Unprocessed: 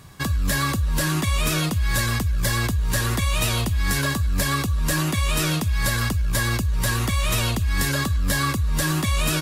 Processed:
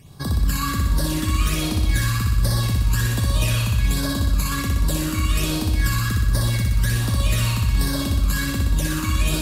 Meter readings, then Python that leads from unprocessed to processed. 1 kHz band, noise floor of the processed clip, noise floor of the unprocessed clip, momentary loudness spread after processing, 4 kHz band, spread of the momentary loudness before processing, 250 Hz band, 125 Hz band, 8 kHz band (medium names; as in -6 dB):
-2.5 dB, -25 dBFS, -25 dBFS, 2 LU, -1.0 dB, 1 LU, +1.5 dB, +2.5 dB, -1.5 dB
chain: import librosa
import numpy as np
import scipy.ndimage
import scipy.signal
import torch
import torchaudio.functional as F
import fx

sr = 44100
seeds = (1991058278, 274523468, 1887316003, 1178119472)

y = fx.phaser_stages(x, sr, stages=12, low_hz=570.0, high_hz=2600.0, hz=1.3, feedback_pct=25)
y = fx.room_flutter(y, sr, wall_m=10.5, rt60_s=1.2)
y = F.gain(torch.from_numpy(y), -1.5).numpy()